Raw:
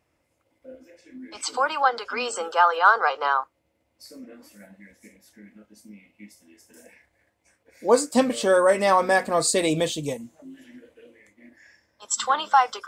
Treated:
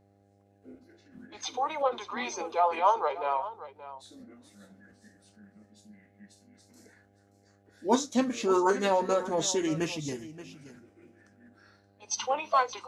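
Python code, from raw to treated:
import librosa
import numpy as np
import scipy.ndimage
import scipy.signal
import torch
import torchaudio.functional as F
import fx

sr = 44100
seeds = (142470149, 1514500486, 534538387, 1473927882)

y = fx.formant_shift(x, sr, semitones=-4)
y = fx.echo_multitap(y, sr, ms=(47, 577), db=(-19.5, -15.0))
y = fx.dmg_buzz(y, sr, base_hz=100.0, harmonics=8, level_db=-58.0, tilt_db=-3, odd_only=False)
y = F.gain(torch.from_numpy(y), -6.5).numpy()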